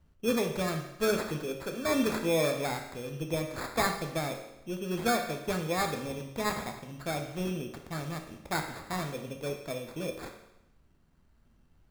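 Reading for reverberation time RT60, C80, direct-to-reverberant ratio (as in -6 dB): 0.90 s, 9.5 dB, 3.5 dB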